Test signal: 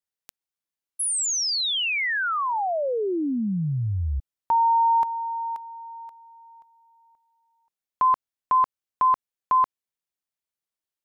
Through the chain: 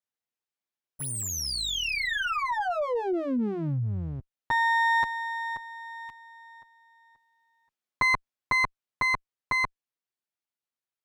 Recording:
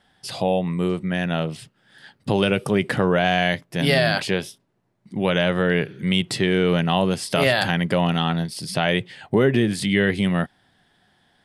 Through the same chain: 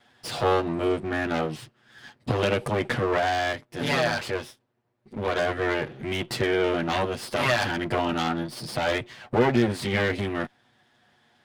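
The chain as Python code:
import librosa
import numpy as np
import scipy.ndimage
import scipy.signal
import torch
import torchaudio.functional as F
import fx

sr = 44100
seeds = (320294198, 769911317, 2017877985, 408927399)

y = fx.lower_of_two(x, sr, delay_ms=8.3)
y = fx.high_shelf(y, sr, hz=5900.0, db=-9.0)
y = fx.rider(y, sr, range_db=5, speed_s=2.0)
y = fx.highpass(y, sr, hz=110.0, slope=6)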